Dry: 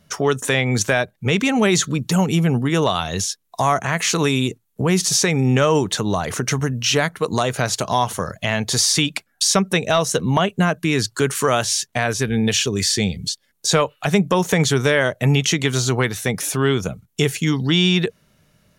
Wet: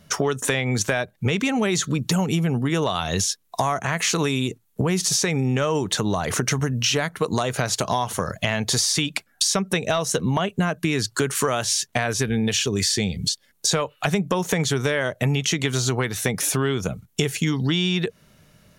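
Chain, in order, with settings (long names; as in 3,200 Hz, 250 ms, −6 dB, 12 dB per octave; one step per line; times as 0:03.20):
downward compressor 6 to 1, threshold −23 dBFS, peak gain reduction 11 dB
level +4 dB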